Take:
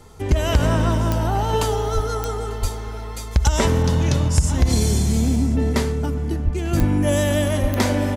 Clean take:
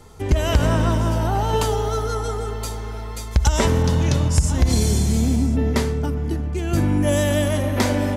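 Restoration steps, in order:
click removal
high-pass at the plosives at 0:01.94/0:02.61/0:06.44/0:06.78/0:07.61
echo removal 896 ms −22 dB

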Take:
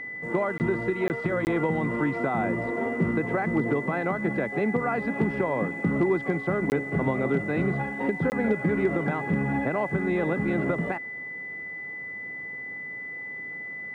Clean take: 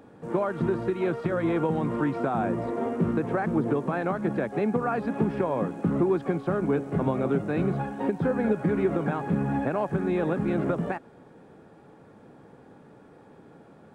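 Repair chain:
clipped peaks rebuilt −14.5 dBFS
notch filter 2,000 Hz, Q 30
repair the gap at 0:00.58/0:01.08/0:01.45/0:06.70/0:08.30, 19 ms

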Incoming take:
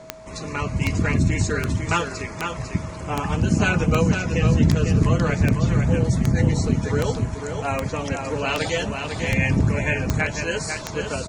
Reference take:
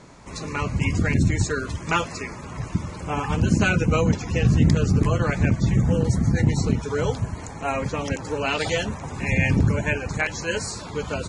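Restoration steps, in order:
click removal
notch filter 640 Hz, Q 30
echo removal 499 ms −6 dB

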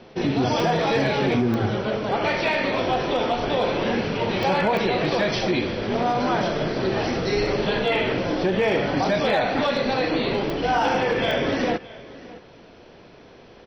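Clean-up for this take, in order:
clipped peaks rebuilt −13 dBFS
click removal
echo removal 619 ms −19.5 dB

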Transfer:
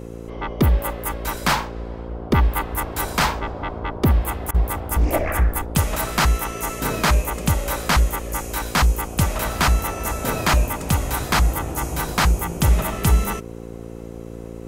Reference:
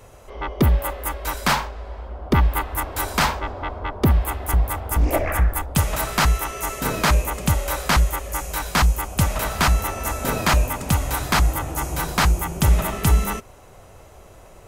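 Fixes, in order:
hum removal 57.2 Hz, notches 9
repair the gap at 0:04.51, 33 ms

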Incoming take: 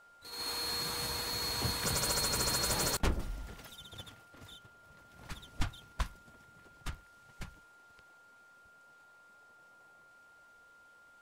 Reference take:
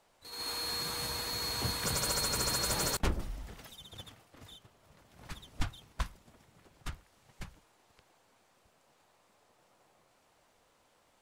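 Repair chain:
notch filter 1,400 Hz, Q 30

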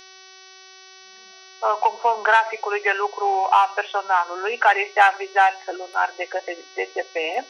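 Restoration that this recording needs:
hum removal 377.9 Hz, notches 16

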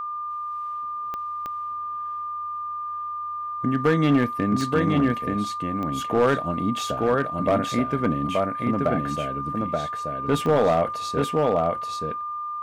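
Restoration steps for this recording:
clipped peaks rebuilt −13 dBFS
click removal
notch filter 1,200 Hz, Q 30
echo removal 878 ms −3 dB

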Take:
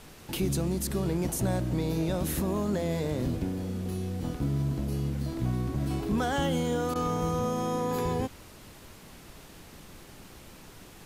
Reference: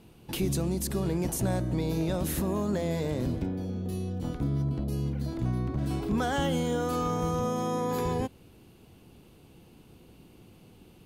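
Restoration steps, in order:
repair the gap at 0:06.94, 14 ms
noise reduction from a noise print 6 dB

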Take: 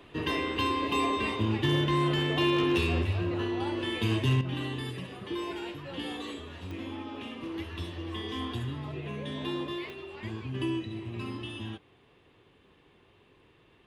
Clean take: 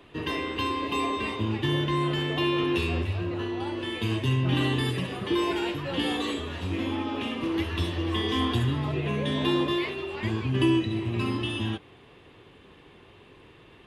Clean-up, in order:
clipped peaks rebuilt −19 dBFS
click removal
level correction +9 dB, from 0:04.41

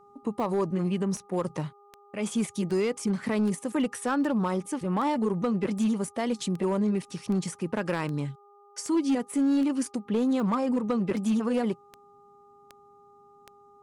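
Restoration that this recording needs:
clipped peaks rebuilt −20 dBFS
click removal
hum removal 406.4 Hz, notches 3

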